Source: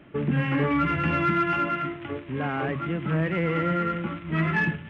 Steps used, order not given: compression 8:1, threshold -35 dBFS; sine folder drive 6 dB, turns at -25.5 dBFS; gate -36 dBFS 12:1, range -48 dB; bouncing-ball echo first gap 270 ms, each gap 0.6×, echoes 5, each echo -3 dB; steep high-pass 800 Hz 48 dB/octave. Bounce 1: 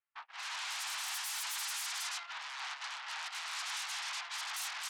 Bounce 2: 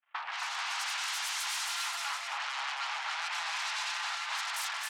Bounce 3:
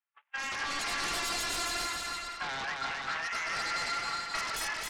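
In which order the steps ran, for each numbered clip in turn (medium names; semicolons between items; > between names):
bouncing-ball echo > sine folder > compression > steep high-pass > gate; sine folder > gate > steep high-pass > compression > bouncing-ball echo; steep high-pass > gate > sine folder > compression > bouncing-ball echo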